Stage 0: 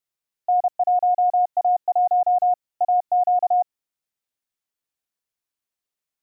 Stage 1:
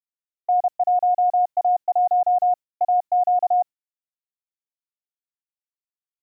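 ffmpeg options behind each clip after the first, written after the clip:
ffmpeg -i in.wav -af "agate=range=-33dB:threshold=-25dB:ratio=3:detection=peak" out.wav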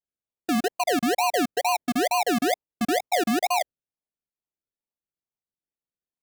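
ffmpeg -i in.wav -af "equalizer=frequency=450:width_type=o:width=1.6:gain=7,acrusher=samples=36:mix=1:aa=0.000001:lfo=1:lforange=21.6:lforate=2.2,volume=-8.5dB" out.wav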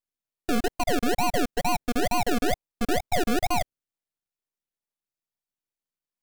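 ffmpeg -i in.wav -af "aeval=exprs='max(val(0),0)':channel_layout=same,volume=3dB" out.wav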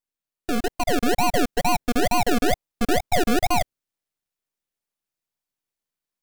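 ffmpeg -i in.wav -af "dynaudnorm=framelen=560:gausssize=3:maxgain=4dB" out.wav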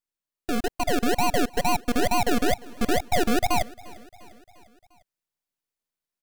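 ffmpeg -i in.wav -af "aecho=1:1:350|700|1050|1400:0.0794|0.0461|0.0267|0.0155,volume=-2dB" out.wav

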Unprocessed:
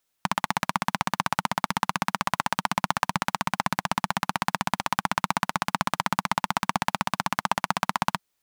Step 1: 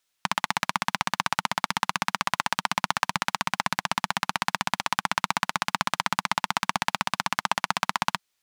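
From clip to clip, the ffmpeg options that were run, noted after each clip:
ffmpeg -i in.wav -af "equalizer=frequency=3600:width=0.31:gain=8.5,volume=-5dB" out.wav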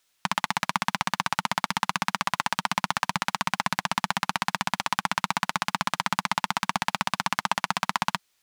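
ffmpeg -i in.wav -af "alimiter=limit=-10dB:level=0:latency=1:release=11,volume=6dB" out.wav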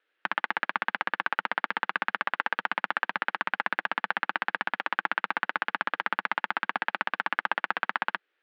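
ffmpeg -i in.wav -af "highpass=frequency=300:width=0.5412,highpass=frequency=300:width=1.3066,equalizer=frequency=330:width_type=q:width=4:gain=5,equalizer=frequency=480:width_type=q:width=4:gain=7,equalizer=frequency=690:width_type=q:width=4:gain=-4,equalizer=frequency=1000:width_type=q:width=4:gain=-8,equalizer=frequency=1600:width_type=q:width=4:gain=6,equalizer=frequency=2300:width_type=q:width=4:gain=-3,lowpass=frequency=2700:width=0.5412,lowpass=frequency=2700:width=1.3066" out.wav

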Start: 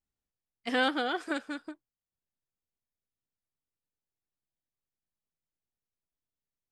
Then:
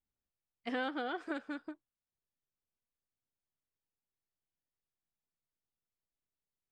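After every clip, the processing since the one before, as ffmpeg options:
ffmpeg -i in.wav -af "aemphasis=mode=reproduction:type=75fm,acompressor=threshold=-32dB:ratio=2.5,volume=-3dB" out.wav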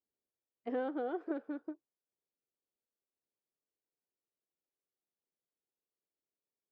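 ffmpeg -i in.wav -af "bandpass=frequency=420:width_type=q:width=1.7:csg=0,volume=5.5dB" out.wav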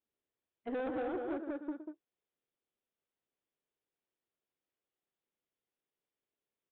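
ffmpeg -i in.wav -af "aecho=1:1:116.6|192.4:0.316|0.562,aresample=8000,asoftclip=type=tanh:threshold=-33.5dB,aresample=44100,volume=2dB" out.wav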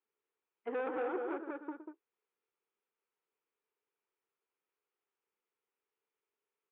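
ffmpeg -i in.wav -af "highpass=280,equalizer=frequency=280:width_type=q:width=4:gain=-4,equalizer=frequency=430:width_type=q:width=4:gain=8,equalizer=frequency=620:width_type=q:width=4:gain=-7,equalizer=frequency=930:width_type=q:width=4:gain=6,equalizer=frequency=1300:width_type=q:width=4:gain=6,equalizer=frequency=2400:width_type=q:width=4:gain=4,lowpass=frequency=3000:width=0.5412,lowpass=frequency=3000:width=1.3066" out.wav

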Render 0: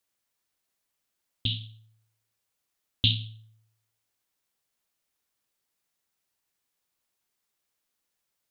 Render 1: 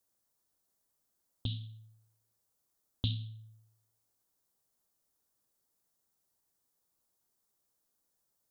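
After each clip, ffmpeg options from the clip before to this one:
ffmpeg -i in.wav -af "equalizer=frequency=2500:width_type=o:width=1.5:gain=-14,acompressor=threshold=-46dB:ratio=1.5,volume=2.5dB" out.wav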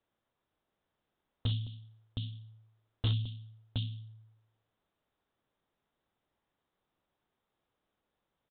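ffmpeg -i in.wav -af "aecho=1:1:65|215|718:0.126|0.126|0.473,aresample=8000,asoftclip=type=hard:threshold=-30.5dB,aresample=44100,volume=5.5dB" out.wav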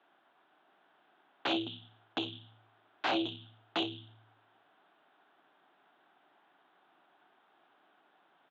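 ffmpeg -i in.wav -af "aeval=exprs='0.0891*sin(PI/2*6.31*val(0)/0.0891)':channel_layout=same,highpass=frequency=220:width=0.5412,highpass=frequency=220:width=1.3066,equalizer=frequency=220:width_type=q:width=4:gain=-8,equalizer=frequency=500:width_type=q:width=4:gain=-10,equalizer=frequency=740:width_type=q:width=4:gain=7,equalizer=frequency=1500:width_type=q:width=4:gain=6,equalizer=frequency=2100:width_type=q:width=4:gain=-3,lowpass=frequency=3400:width=0.5412,lowpass=frequency=3400:width=1.3066,volume=-3dB" out.wav

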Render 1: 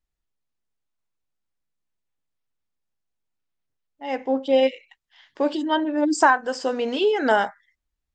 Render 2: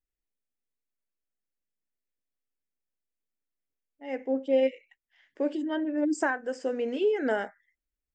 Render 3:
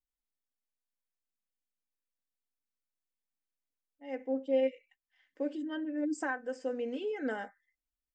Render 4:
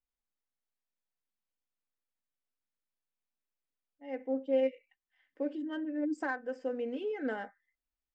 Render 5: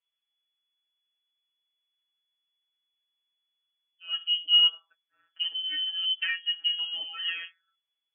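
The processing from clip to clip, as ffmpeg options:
ffmpeg -i in.wav -af "equalizer=frequency=125:width_type=o:width=1:gain=-8,equalizer=frequency=250:width_type=o:width=1:gain=4,equalizer=frequency=500:width_type=o:width=1:gain=5,equalizer=frequency=1000:width_type=o:width=1:gain=-11,equalizer=frequency=2000:width_type=o:width=1:gain=6,equalizer=frequency=4000:width_type=o:width=1:gain=-12,volume=-8dB" out.wav
ffmpeg -i in.wav -af "aecho=1:1:3.9:0.56,volume=-8.5dB" out.wav
ffmpeg -i in.wav -af "adynamicsmooth=sensitivity=5:basefreq=3900" out.wav
ffmpeg -i in.wav -af "afftfilt=real='hypot(re,im)*cos(PI*b)':imag='0':win_size=1024:overlap=0.75,aemphasis=mode=reproduction:type=75fm,lowpass=frequency=2900:width_type=q:width=0.5098,lowpass=frequency=2900:width_type=q:width=0.6013,lowpass=frequency=2900:width_type=q:width=0.9,lowpass=frequency=2900:width_type=q:width=2.563,afreqshift=-3400,volume=8.5dB" out.wav

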